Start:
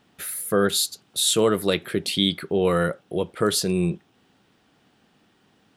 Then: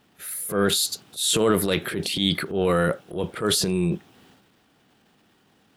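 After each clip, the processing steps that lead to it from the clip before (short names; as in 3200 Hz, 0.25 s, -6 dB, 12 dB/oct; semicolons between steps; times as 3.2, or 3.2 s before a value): pre-echo 31 ms -22 dB; requantised 12-bit, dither none; transient shaper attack -8 dB, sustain +8 dB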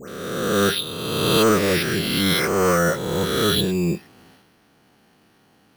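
spectral swells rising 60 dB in 1.72 s; dispersion highs, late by 99 ms, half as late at 1800 Hz; careless resampling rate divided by 6×, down filtered, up hold; gain +1 dB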